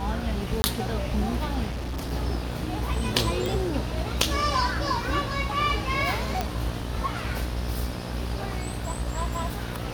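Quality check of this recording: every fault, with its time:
mains buzz 60 Hz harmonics 31 −32 dBFS
0:00.62–0:00.64: drop-out 20 ms
0:01.69–0:02.13: clipping −28 dBFS
0:03.46: click
0:06.41: click −11 dBFS

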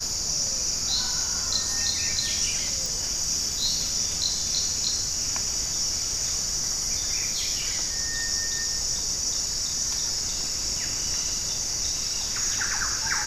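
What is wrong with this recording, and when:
0:02.86: click

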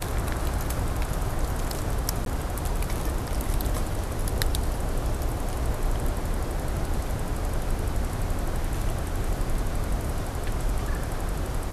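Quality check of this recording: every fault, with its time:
0:02.25–0:02.26: drop-out 12 ms

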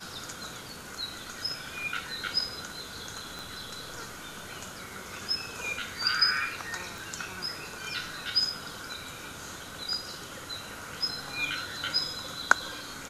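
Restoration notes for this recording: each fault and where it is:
0:03.39: click
0:06.98: click

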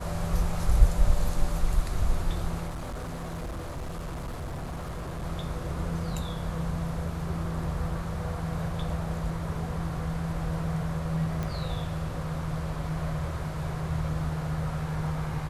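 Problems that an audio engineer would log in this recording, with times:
0:02.67–0:05.24: clipping −31.5 dBFS
0:11.43: click

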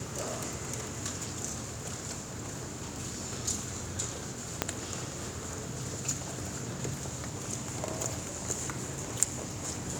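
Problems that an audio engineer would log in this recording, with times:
0:04.62: click −9 dBFS

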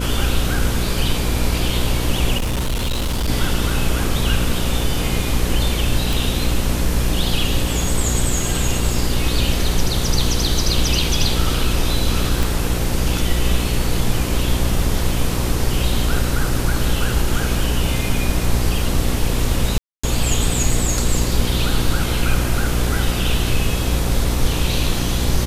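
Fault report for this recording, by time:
mains buzz 60 Hz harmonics 9 −22 dBFS
0:02.37–0:03.29: clipping −17 dBFS
0:06.13: click
0:12.43: click
0:19.78–0:20.04: drop-out 255 ms

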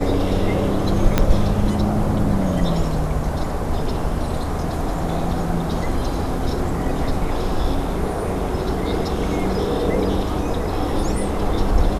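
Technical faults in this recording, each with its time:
0:01.18: click −2 dBFS

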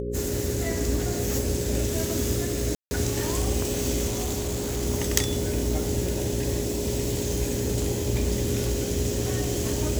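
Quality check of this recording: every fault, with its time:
mains buzz 60 Hz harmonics 9 −32 dBFS
whistle 410 Hz −31 dBFS
0:02.75–0:02.91: drop-out 160 ms
0:04.07–0:04.83: clipping −24 dBFS

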